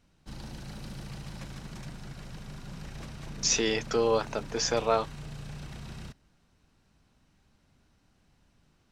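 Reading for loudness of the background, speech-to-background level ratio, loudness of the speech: -43.5 LUFS, 15.5 dB, -28.0 LUFS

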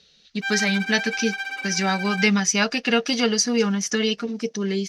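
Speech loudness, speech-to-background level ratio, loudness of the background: -22.0 LUFS, 6.5 dB, -28.5 LUFS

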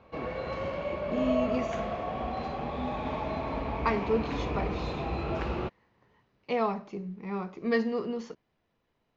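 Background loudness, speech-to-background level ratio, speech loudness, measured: -33.5 LUFS, 1.0 dB, -32.5 LUFS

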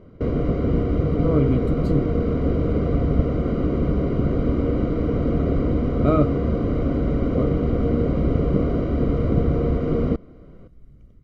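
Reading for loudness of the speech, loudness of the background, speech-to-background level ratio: -25.5 LUFS, -22.5 LUFS, -3.0 dB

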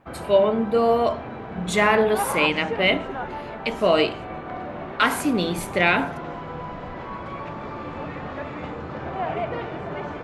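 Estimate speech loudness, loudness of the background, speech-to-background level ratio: -21.5 LUFS, -32.5 LUFS, 11.0 dB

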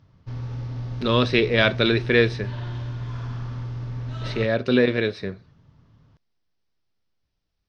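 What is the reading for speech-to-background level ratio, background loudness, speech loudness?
11.0 dB, -32.0 LUFS, -21.0 LUFS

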